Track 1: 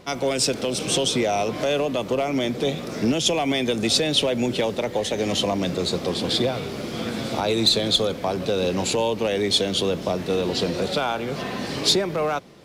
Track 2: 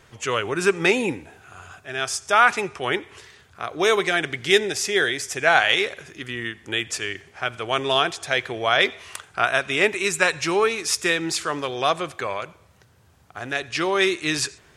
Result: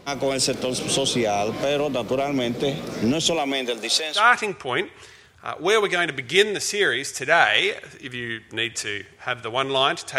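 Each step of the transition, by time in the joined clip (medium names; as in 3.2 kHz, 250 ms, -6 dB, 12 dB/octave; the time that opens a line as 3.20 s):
track 1
3.35–4.26 s: high-pass 230 Hz -> 1.1 kHz
4.19 s: go over to track 2 from 2.34 s, crossfade 0.14 s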